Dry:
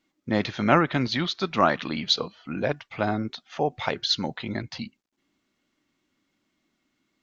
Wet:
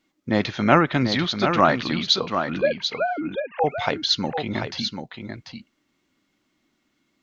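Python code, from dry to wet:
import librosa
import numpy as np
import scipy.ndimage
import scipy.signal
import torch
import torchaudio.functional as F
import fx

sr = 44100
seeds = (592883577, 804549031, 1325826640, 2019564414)

p1 = fx.sine_speech(x, sr, at=(2.61, 3.64))
p2 = p1 + fx.echo_single(p1, sr, ms=740, db=-7.0, dry=0)
y = F.gain(torch.from_numpy(p2), 3.0).numpy()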